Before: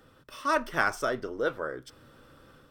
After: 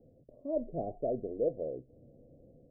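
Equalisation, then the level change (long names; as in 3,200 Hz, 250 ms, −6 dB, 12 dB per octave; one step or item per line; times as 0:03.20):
Chebyshev low-pass with heavy ripple 720 Hz, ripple 3 dB
0.0 dB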